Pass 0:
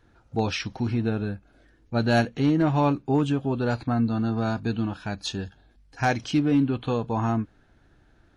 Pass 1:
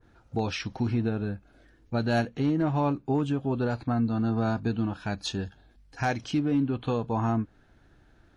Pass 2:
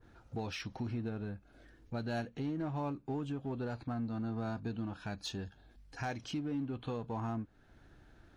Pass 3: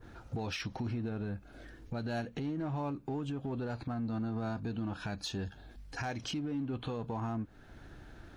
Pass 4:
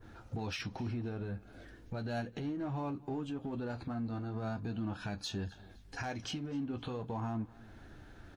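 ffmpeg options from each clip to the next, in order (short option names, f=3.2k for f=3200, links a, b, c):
-af "alimiter=limit=-18dB:level=0:latency=1:release=419,adynamicequalizer=threshold=0.00794:dfrequency=1700:dqfactor=0.7:tfrequency=1700:tqfactor=0.7:attack=5:release=100:ratio=0.375:range=2.5:mode=cutabove:tftype=highshelf"
-filter_complex "[0:a]asplit=2[a][b];[b]volume=35.5dB,asoftclip=hard,volume=-35.5dB,volume=-7.5dB[c];[a][c]amix=inputs=2:normalize=0,acompressor=threshold=-45dB:ratio=1.5,volume=-4dB"
-af "alimiter=level_in=14dB:limit=-24dB:level=0:latency=1:release=147,volume=-14dB,volume=8.5dB"
-af "flanger=delay=9.4:depth=2.4:regen=-54:speed=0.39:shape=sinusoidal,aecho=1:1:257|514:0.0794|0.027,volume=2.5dB"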